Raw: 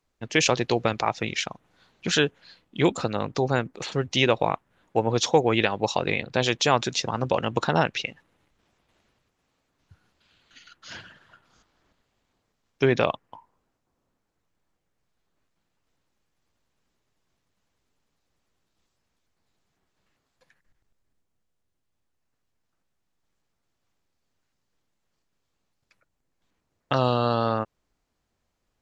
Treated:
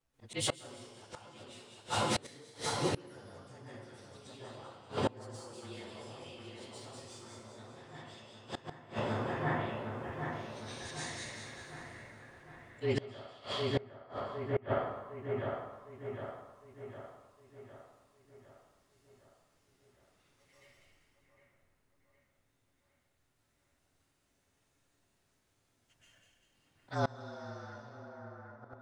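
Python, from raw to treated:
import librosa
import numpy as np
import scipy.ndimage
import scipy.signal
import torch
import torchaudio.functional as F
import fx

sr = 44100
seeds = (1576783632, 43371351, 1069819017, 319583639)

p1 = fx.partial_stretch(x, sr, pct=110)
p2 = fx.auto_swell(p1, sr, attack_ms=171.0)
p3 = 10.0 ** (-28.5 / 20.0) * np.tanh(p2 / 10.0 ** (-28.5 / 20.0))
p4 = p2 + (p3 * 10.0 ** (-6.5 / 20.0))
p5 = fx.echo_split(p4, sr, split_hz=2200.0, low_ms=758, high_ms=195, feedback_pct=52, wet_db=-3.5)
p6 = fx.rev_plate(p5, sr, seeds[0], rt60_s=1.0, hf_ratio=0.8, predelay_ms=110, drr_db=-9.5)
p7 = fx.gate_flip(p6, sr, shuts_db=-13.0, range_db=-27)
y = p7 * 10.0 ** (-6.0 / 20.0)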